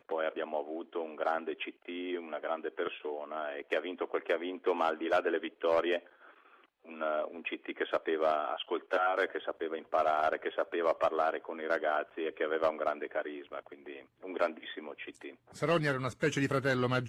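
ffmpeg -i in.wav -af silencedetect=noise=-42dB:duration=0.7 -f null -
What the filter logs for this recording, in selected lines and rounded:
silence_start: 5.99
silence_end: 6.89 | silence_duration: 0.90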